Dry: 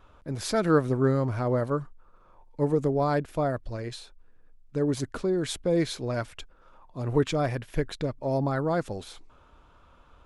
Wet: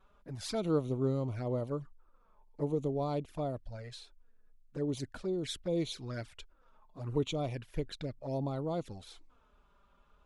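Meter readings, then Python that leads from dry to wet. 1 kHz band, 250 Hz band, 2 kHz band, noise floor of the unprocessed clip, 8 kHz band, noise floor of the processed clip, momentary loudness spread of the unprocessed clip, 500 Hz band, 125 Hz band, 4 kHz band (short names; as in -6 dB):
-11.5 dB, -8.0 dB, -14.5 dB, -57 dBFS, -9.0 dB, -67 dBFS, 14 LU, -8.5 dB, -7.5 dB, -5.0 dB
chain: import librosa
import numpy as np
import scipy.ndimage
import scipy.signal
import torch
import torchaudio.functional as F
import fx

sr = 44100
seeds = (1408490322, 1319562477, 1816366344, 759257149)

y = fx.dynamic_eq(x, sr, hz=3700.0, q=0.96, threshold_db=-48.0, ratio=4.0, max_db=5)
y = fx.env_flanger(y, sr, rest_ms=5.5, full_db=-23.0)
y = y * librosa.db_to_amplitude(-7.5)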